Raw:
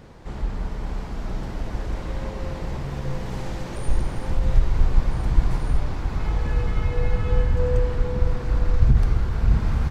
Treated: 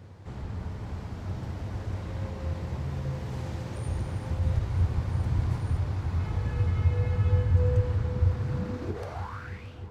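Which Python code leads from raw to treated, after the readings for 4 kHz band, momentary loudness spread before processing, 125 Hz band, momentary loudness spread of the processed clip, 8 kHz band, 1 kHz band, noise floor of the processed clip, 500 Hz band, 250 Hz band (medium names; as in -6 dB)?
-7.0 dB, 10 LU, -1.5 dB, 12 LU, no reading, -6.0 dB, -41 dBFS, -6.5 dB, -5.0 dB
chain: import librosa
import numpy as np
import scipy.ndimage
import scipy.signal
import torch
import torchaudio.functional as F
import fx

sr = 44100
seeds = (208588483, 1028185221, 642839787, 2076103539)

y = fx.fade_out_tail(x, sr, length_s=0.71)
y = fx.filter_sweep_highpass(y, sr, from_hz=90.0, to_hz=2900.0, start_s=8.37, end_s=9.7, q=5.6)
y = fx.echo_heads(y, sr, ms=312, heads='all three', feedback_pct=63, wet_db=-20.0)
y = y * librosa.db_to_amplitude(-7.0)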